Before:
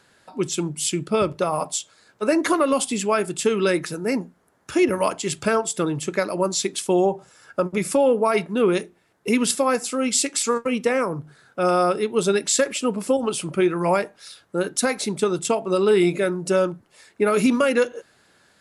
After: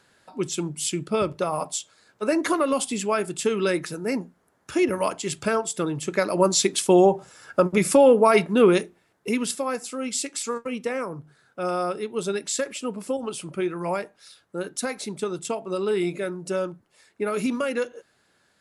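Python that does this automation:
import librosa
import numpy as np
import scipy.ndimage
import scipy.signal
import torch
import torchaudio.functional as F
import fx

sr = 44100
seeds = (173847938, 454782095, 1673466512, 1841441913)

y = fx.gain(x, sr, db=fx.line((5.99, -3.0), (6.43, 3.0), (8.63, 3.0), (9.55, -7.0)))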